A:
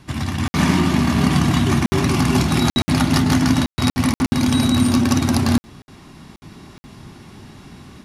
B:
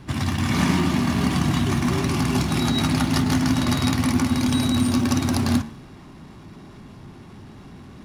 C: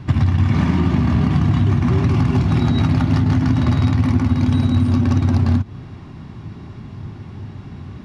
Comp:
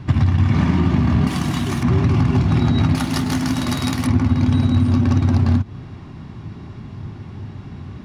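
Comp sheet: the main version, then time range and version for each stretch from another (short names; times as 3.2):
C
1.27–1.83 from B
2.95–4.07 from B
not used: A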